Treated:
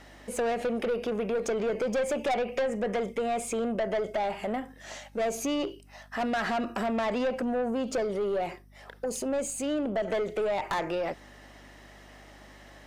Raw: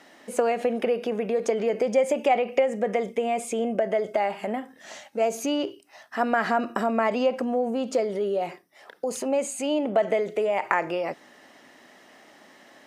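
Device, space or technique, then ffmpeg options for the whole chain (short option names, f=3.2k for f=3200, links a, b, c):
valve amplifier with mains hum: -filter_complex "[0:a]asettb=1/sr,asplit=3[a][b][c];[a]atrim=end=9.054[d];[b]atrim=start=9.05:end=10.08,asetpts=PTS-STARTPTS,afade=t=in:d=0.004:c=qsin,afade=t=out:st=1.026:d=0.004:c=qsin,equalizer=f=1.4k:w=1.1:g=-11.5[e];[c]atrim=start=10.076[f];[d][e]acrossfade=d=0.004:c1=hsin:c2=qsin[g];[g][f]acrossfade=d=0.004:c1=qsin:c2=hsin,aeval=exprs='(tanh(15.8*val(0)+0.15)-tanh(0.15))/15.8':c=same,aeval=exprs='val(0)+0.002*(sin(2*PI*50*n/s)+sin(2*PI*2*50*n/s)/2+sin(2*PI*3*50*n/s)/3+sin(2*PI*4*50*n/s)/4+sin(2*PI*5*50*n/s)/5)':c=same"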